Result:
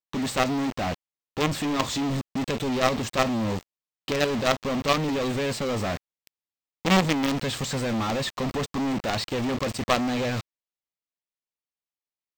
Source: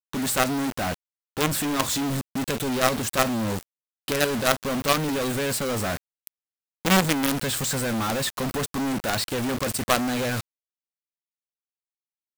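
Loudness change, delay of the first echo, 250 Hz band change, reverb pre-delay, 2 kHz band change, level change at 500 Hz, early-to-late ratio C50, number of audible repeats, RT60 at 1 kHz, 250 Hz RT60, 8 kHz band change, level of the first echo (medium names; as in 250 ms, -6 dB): -1.5 dB, no echo, 0.0 dB, no reverb, -2.5 dB, 0.0 dB, no reverb, no echo, no reverb, no reverb, -8.0 dB, no echo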